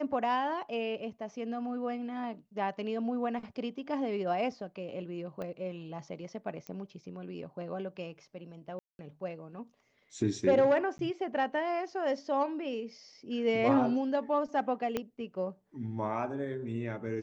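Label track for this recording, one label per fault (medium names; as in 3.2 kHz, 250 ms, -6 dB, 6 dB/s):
5.420000	5.420000	pop -27 dBFS
6.670000	6.670000	pop -27 dBFS
8.790000	8.990000	dropout 201 ms
10.980000	10.990000	dropout
14.970000	14.970000	pop -18 dBFS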